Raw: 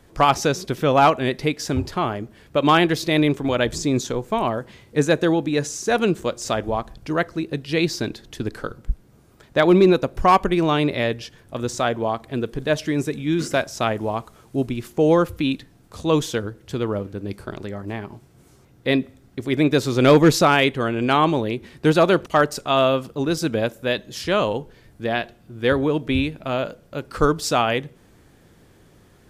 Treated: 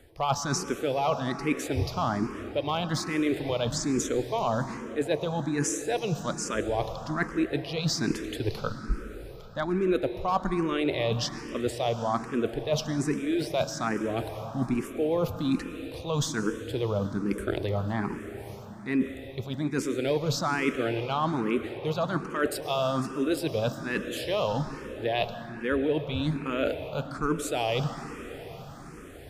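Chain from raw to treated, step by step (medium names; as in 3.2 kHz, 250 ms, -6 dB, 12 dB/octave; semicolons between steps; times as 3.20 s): reverse; compression 12:1, threshold -30 dBFS, peak gain reduction 21 dB; reverse; reverberation RT60 5.3 s, pre-delay 97 ms, DRR 8.5 dB; barber-pole phaser +1.2 Hz; trim +8 dB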